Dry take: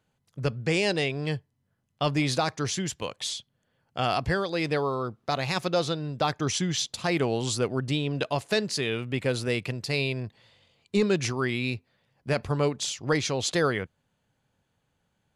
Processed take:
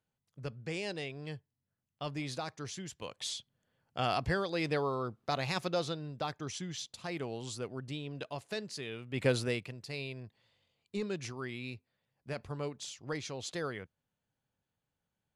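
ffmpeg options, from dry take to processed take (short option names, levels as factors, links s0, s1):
-af "volume=2.11,afade=t=in:st=2.91:d=0.44:silence=0.421697,afade=t=out:st=5.41:d=1.07:silence=0.421697,afade=t=in:st=9.11:d=0.14:silence=0.251189,afade=t=out:st=9.25:d=0.44:silence=0.251189"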